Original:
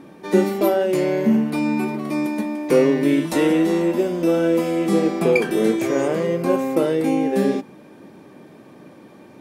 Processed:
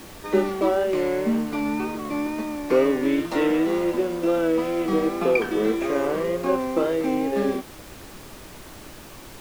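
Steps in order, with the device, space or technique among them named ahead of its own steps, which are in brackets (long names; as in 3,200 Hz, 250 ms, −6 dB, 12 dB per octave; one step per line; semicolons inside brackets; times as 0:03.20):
horn gramophone (band-pass filter 230–4,100 Hz; parametric band 1,200 Hz +5.5 dB 0.4 octaves; tape wow and flutter; pink noise bed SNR 19 dB)
level −3 dB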